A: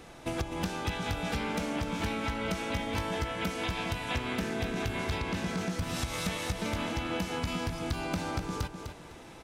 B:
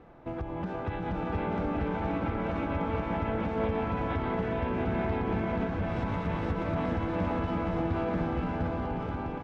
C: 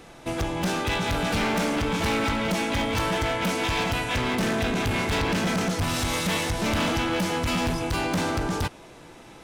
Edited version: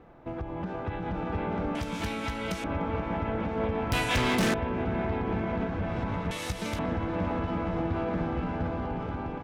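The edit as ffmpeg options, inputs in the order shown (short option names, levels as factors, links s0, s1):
-filter_complex "[0:a]asplit=2[s0][s1];[1:a]asplit=4[s2][s3][s4][s5];[s2]atrim=end=1.752[s6];[s0]atrim=start=1.748:end=2.642[s7];[s3]atrim=start=2.638:end=3.922[s8];[2:a]atrim=start=3.918:end=4.542[s9];[s4]atrim=start=4.538:end=6.312[s10];[s1]atrim=start=6.308:end=6.792[s11];[s5]atrim=start=6.788[s12];[s6][s7]acrossfade=d=0.004:c1=hsin:c2=hsin[s13];[s13][s8]acrossfade=d=0.004:c1=hsin:c2=hsin[s14];[s14][s9]acrossfade=d=0.004:c1=hsin:c2=hsin[s15];[s15][s10]acrossfade=d=0.004:c1=hsin:c2=hsin[s16];[s16][s11]acrossfade=d=0.004:c1=hsin:c2=hsin[s17];[s17][s12]acrossfade=d=0.004:c1=hsin:c2=hsin"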